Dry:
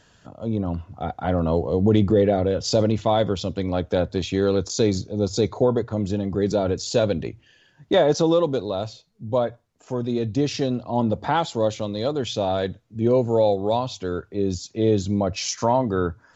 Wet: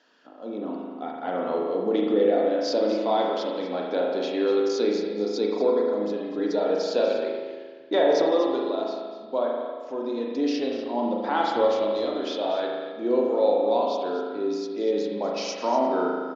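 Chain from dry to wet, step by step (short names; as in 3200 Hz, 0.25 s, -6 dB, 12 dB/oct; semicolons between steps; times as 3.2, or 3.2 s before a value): elliptic band-pass 270–5300 Hz, stop band 40 dB; 6.38–6.82 comb 6.5 ms, depth 63%; 11.4–12.05 transient shaper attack +8 dB, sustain +2 dB; echo 0.243 s -13 dB; spring tank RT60 1.6 s, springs 38 ms, chirp 50 ms, DRR -1.5 dB; gain -5 dB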